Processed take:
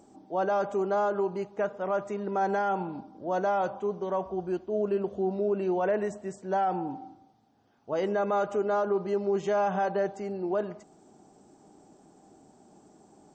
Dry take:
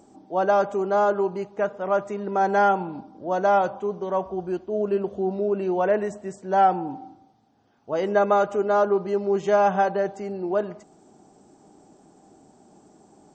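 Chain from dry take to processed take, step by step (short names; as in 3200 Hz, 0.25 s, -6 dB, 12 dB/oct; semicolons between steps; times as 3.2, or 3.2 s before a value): limiter -16.5 dBFS, peak gain reduction 8.5 dB; gain -3 dB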